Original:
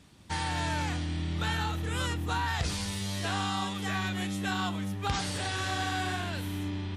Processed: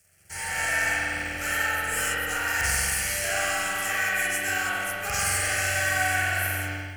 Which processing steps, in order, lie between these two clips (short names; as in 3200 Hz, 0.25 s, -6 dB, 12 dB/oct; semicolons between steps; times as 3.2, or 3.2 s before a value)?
sample leveller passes 2; pre-emphasis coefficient 0.9; fixed phaser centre 1000 Hz, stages 6; spring tank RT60 2.4 s, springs 44 ms, chirp 55 ms, DRR -8 dB; AGC gain up to 8.5 dB; gain +2 dB